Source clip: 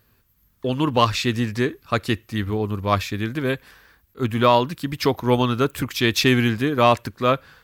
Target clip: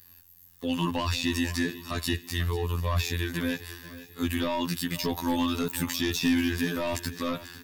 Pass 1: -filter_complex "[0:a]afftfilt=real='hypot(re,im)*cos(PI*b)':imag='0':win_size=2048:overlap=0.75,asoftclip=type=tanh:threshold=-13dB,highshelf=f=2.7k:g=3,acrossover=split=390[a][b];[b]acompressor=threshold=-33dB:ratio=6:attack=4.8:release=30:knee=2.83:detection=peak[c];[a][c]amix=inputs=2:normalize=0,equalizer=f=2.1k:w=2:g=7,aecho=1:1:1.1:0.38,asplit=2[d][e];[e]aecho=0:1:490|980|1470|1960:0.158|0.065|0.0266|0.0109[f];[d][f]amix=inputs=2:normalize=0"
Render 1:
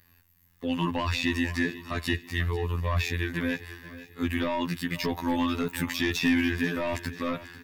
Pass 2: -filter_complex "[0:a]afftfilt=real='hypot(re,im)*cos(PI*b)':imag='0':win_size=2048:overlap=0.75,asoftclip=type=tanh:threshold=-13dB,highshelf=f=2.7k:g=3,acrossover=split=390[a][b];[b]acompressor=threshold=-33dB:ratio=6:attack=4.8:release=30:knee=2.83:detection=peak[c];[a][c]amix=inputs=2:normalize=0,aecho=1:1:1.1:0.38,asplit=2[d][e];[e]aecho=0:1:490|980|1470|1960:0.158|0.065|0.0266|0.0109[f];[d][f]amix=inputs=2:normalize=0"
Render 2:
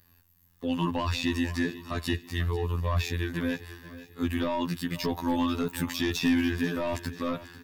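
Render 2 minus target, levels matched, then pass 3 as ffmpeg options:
4000 Hz band -3.0 dB
-filter_complex "[0:a]afftfilt=real='hypot(re,im)*cos(PI*b)':imag='0':win_size=2048:overlap=0.75,asoftclip=type=tanh:threshold=-13dB,highshelf=f=2.7k:g=14.5,acrossover=split=390[a][b];[b]acompressor=threshold=-33dB:ratio=6:attack=4.8:release=30:knee=2.83:detection=peak[c];[a][c]amix=inputs=2:normalize=0,aecho=1:1:1.1:0.38,asplit=2[d][e];[e]aecho=0:1:490|980|1470|1960:0.158|0.065|0.0266|0.0109[f];[d][f]amix=inputs=2:normalize=0"

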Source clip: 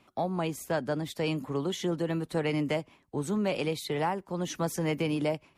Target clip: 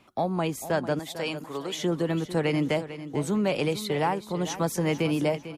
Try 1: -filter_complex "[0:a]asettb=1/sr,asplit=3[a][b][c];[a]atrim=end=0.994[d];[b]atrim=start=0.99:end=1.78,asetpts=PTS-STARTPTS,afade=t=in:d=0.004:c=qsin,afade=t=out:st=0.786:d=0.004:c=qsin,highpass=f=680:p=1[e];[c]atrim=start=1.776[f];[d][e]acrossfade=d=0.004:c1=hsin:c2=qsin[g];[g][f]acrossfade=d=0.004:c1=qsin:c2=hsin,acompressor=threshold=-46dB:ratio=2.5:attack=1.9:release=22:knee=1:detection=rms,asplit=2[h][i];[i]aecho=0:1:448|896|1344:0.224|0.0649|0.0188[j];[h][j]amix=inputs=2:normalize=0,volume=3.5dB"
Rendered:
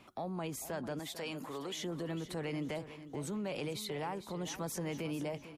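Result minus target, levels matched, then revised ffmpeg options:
compressor: peak gain reduction +15 dB
-filter_complex "[0:a]asettb=1/sr,asplit=3[a][b][c];[a]atrim=end=0.994[d];[b]atrim=start=0.99:end=1.78,asetpts=PTS-STARTPTS,afade=t=in:d=0.004:c=qsin,afade=t=out:st=0.786:d=0.004:c=qsin,highpass=f=680:p=1[e];[c]atrim=start=1.776[f];[d][e]acrossfade=d=0.004:c1=hsin:c2=qsin[g];[g][f]acrossfade=d=0.004:c1=qsin:c2=hsin,asplit=2[h][i];[i]aecho=0:1:448|896|1344:0.224|0.0649|0.0188[j];[h][j]amix=inputs=2:normalize=0,volume=3.5dB"

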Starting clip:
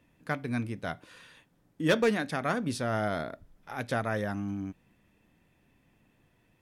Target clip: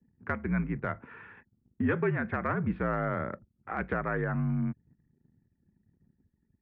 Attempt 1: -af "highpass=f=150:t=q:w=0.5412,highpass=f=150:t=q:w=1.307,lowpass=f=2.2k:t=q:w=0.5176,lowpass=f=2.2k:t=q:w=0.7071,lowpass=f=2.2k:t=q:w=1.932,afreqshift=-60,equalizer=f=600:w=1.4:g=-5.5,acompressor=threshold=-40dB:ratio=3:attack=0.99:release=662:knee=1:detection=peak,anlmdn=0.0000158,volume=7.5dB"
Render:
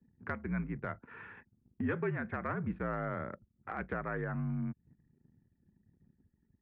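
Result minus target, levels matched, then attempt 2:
compressor: peak gain reduction +6 dB
-af "highpass=f=150:t=q:w=0.5412,highpass=f=150:t=q:w=1.307,lowpass=f=2.2k:t=q:w=0.5176,lowpass=f=2.2k:t=q:w=0.7071,lowpass=f=2.2k:t=q:w=1.932,afreqshift=-60,equalizer=f=600:w=1.4:g=-5.5,acompressor=threshold=-31dB:ratio=3:attack=0.99:release=662:knee=1:detection=peak,anlmdn=0.0000158,volume=7.5dB"

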